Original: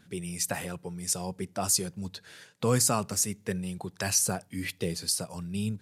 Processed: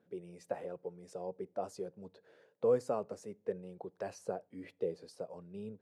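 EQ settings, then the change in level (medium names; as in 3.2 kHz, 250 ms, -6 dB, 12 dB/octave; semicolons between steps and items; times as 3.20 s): band-pass filter 500 Hz, Q 2.8; +1.0 dB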